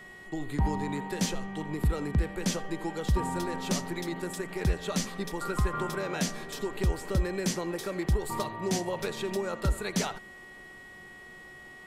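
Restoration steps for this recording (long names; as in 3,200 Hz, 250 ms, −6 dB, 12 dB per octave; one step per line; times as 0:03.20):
hum removal 366.9 Hz, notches 9
notch filter 1,900 Hz, Q 30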